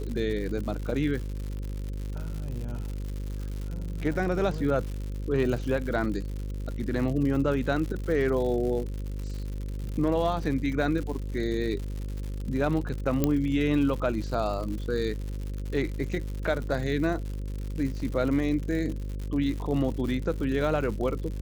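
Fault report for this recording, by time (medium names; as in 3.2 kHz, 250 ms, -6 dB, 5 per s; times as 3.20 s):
buzz 50 Hz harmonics 11 -33 dBFS
crackle 140 per s -34 dBFS
13.24 s: pop -10 dBFS
18.00 s: dropout 2.9 ms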